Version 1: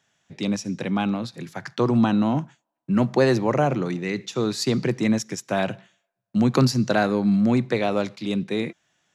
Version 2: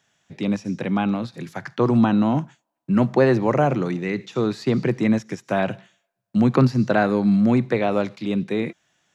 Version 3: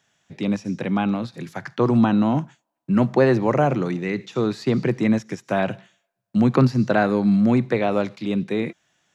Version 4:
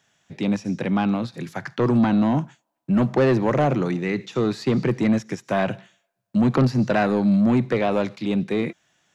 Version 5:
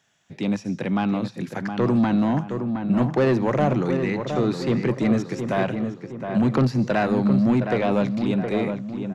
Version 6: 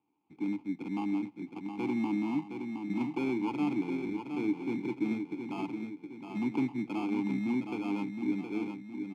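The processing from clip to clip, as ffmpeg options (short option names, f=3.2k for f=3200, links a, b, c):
-filter_complex "[0:a]acrossover=split=2900[a][b];[b]acompressor=threshold=-47dB:ratio=4:attack=1:release=60[c];[a][c]amix=inputs=2:normalize=0,volume=2dB"
-af anull
-af "asoftclip=type=tanh:threshold=-13.5dB,volume=1.5dB"
-filter_complex "[0:a]asplit=2[a][b];[b]adelay=716,lowpass=f=2k:p=1,volume=-6.5dB,asplit=2[c][d];[d]adelay=716,lowpass=f=2k:p=1,volume=0.47,asplit=2[e][f];[f]adelay=716,lowpass=f=2k:p=1,volume=0.47,asplit=2[g][h];[h]adelay=716,lowpass=f=2k:p=1,volume=0.47,asplit=2[i][j];[j]adelay=716,lowpass=f=2k:p=1,volume=0.47,asplit=2[k][l];[l]adelay=716,lowpass=f=2k:p=1,volume=0.47[m];[a][c][e][g][i][k][m]amix=inputs=7:normalize=0,volume=-1.5dB"
-filter_complex "[0:a]acrusher=samples=23:mix=1:aa=0.000001,asplit=3[a][b][c];[a]bandpass=f=300:t=q:w=8,volume=0dB[d];[b]bandpass=f=870:t=q:w=8,volume=-6dB[e];[c]bandpass=f=2.24k:t=q:w=8,volume=-9dB[f];[d][e][f]amix=inputs=3:normalize=0"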